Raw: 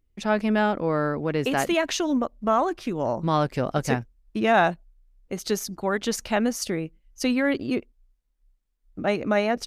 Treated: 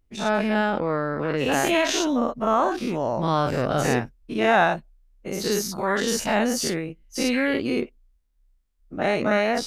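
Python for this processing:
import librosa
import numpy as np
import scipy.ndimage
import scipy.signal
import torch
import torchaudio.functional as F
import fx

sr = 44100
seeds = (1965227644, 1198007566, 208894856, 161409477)

y = fx.spec_dilate(x, sr, span_ms=120)
y = fx.high_shelf(y, sr, hz=7400.0, db=-10.0, at=(0.7, 1.52))
y = F.gain(torch.from_numpy(y), -3.0).numpy()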